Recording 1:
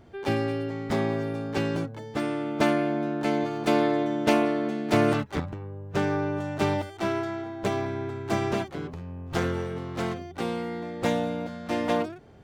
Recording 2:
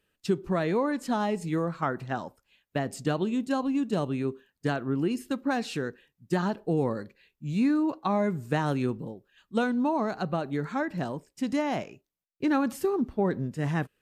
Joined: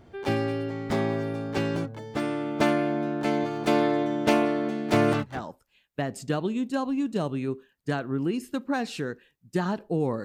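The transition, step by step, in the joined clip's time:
recording 1
5.33 s: go over to recording 2 from 2.10 s, crossfade 0.22 s

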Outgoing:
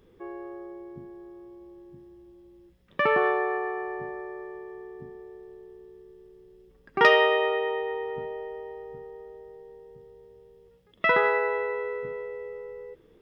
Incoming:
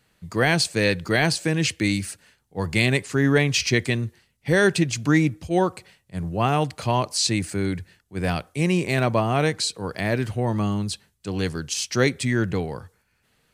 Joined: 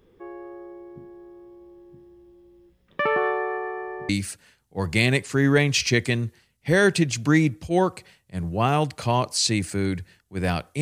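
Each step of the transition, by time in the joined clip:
outgoing
4.09 s: go over to incoming from 1.89 s

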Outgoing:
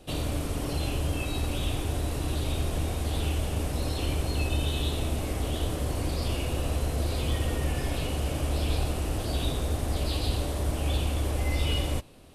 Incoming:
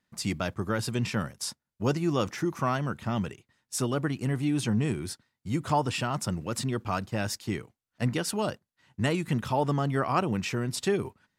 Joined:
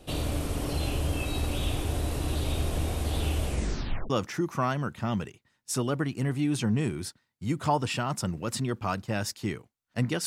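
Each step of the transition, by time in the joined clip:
outgoing
3.45 s: tape stop 0.65 s
4.10 s: go over to incoming from 2.14 s

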